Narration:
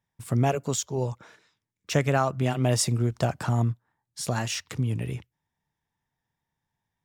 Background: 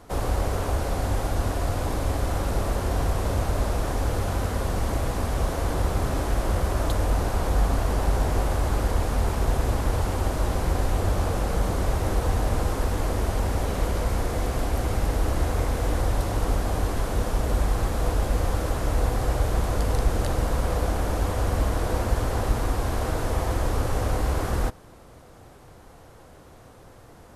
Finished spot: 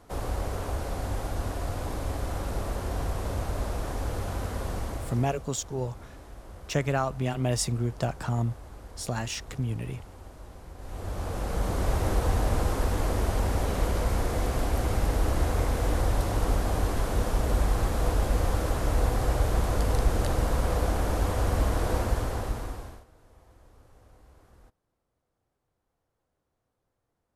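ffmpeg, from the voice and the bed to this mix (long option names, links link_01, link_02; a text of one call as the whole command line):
ffmpeg -i stem1.wav -i stem2.wav -filter_complex "[0:a]adelay=4800,volume=-3.5dB[link_01];[1:a]volume=13.5dB,afade=type=out:start_time=4.73:duration=0.71:silence=0.177828,afade=type=in:start_time=10.77:duration=1.19:silence=0.105925,afade=type=out:start_time=21.94:duration=1.11:silence=0.0316228[link_02];[link_01][link_02]amix=inputs=2:normalize=0" out.wav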